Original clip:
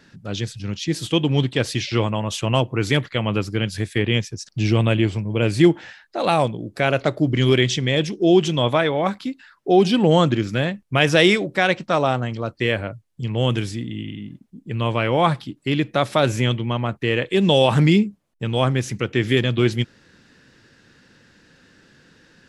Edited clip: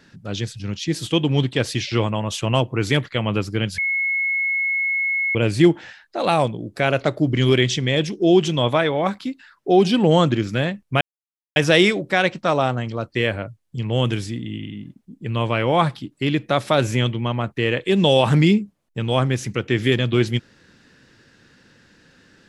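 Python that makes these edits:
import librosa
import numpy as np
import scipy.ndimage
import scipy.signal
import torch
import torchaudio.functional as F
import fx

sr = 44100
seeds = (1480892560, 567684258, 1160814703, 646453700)

y = fx.edit(x, sr, fx.bleep(start_s=3.78, length_s=1.57, hz=2180.0, db=-18.5),
    fx.insert_silence(at_s=11.01, length_s=0.55), tone=tone)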